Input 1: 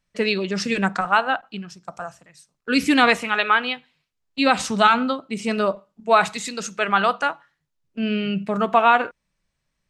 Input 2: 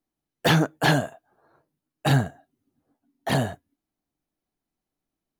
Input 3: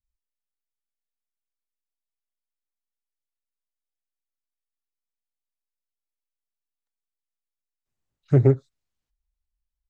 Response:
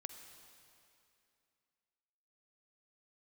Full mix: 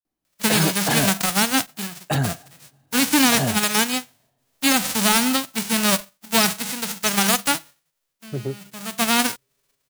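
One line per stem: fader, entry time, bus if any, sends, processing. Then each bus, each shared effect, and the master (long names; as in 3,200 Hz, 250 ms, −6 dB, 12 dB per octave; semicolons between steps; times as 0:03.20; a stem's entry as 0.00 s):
+2.5 dB, 0.25 s, no send, spectral envelope flattened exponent 0.1; automatic ducking −21 dB, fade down 0.40 s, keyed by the third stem
+1.0 dB, 0.05 s, send −17 dB, brickwall limiter −15 dBFS, peak gain reduction 7.5 dB
−10.5 dB, 0.00 s, send −17 dB, high-pass filter 140 Hz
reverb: on, RT60 2.6 s, pre-delay 43 ms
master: brickwall limiter −6 dBFS, peak gain reduction 8 dB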